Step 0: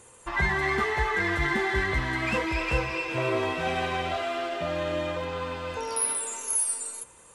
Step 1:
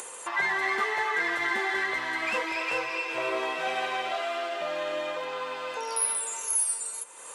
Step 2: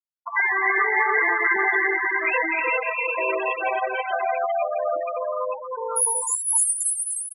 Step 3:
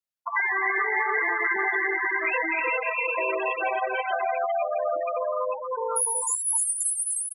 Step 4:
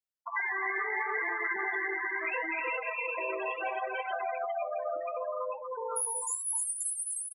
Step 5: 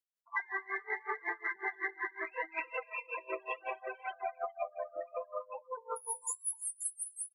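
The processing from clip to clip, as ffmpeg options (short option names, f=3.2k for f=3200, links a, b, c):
-af "highpass=500,acompressor=mode=upward:threshold=-30dB:ratio=2.5"
-af "aecho=1:1:300|510|657|759.9|831.9:0.631|0.398|0.251|0.158|0.1,afftfilt=real='re*gte(hypot(re,im),0.1)':imag='im*gte(hypot(re,im),0.1)':win_size=1024:overlap=0.75,volume=6dB"
-af "acompressor=threshold=-26dB:ratio=2.5,volume=1.5dB"
-filter_complex "[0:a]asplit=2[a][b];[b]adelay=65,lowpass=f=940:p=1,volume=-22dB,asplit=2[c][d];[d]adelay=65,lowpass=f=940:p=1,volume=0.5,asplit=2[e][f];[f]adelay=65,lowpass=f=940:p=1,volume=0.5[g];[a][c][e][g]amix=inputs=4:normalize=0,flanger=delay=4.6:depth=6.4:regen=-78:speed=0.72:shape=triangular,volume=-3dB"
-af "aeval=exprs='0.0944*(cos(1*acos(clip(val(0)/0.0944,-1,1)))-cos(1*PI/2))+0.000596*(cos(4*acos(clip(val(0)/0.0944,-1,1)))-cos(4*PI/2))+0.000531*(cos(5*acos(clip(val(0)/0.0944,-1,1)))-cos(5*PI/2))':c=same,aeval=exprs='val(0)*pow(10,-27*(0.5-0.5*cos(2*PI*5.4*n/s))/20)':c=same"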